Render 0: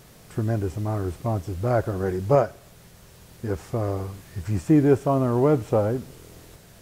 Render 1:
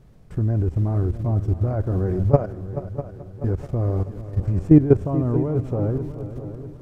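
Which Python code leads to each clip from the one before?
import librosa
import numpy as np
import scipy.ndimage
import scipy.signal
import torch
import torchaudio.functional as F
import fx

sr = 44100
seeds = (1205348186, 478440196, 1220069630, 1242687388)

y = fx.level_steps(x, sr, step_db=15)
y = fx.tilt_eq(y, sr, slope=-3.5)
y = fx.echo_heads(y, sr, ms=216, heads='second and third', feedback_pct=49, wet_db=-13.5)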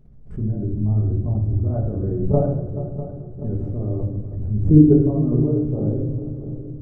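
y = fx.envelope_sharpen(x, sr, power=1.5)
y = fx.room_shoebox(y, sr, seeds[0], volume_m3=320.0, walls='mixed', distance_m=1.4)
y = fx.pre_swell(y, sr, db_per_s=110.0)
y = y * librosa.db_to_amplitude(-5.0)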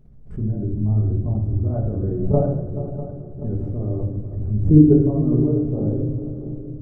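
y = x + 10.0 ** (-17.0 / 20.0) * np.pad(x, (int(502 * sr / 1000.0), 0))[:len(x)]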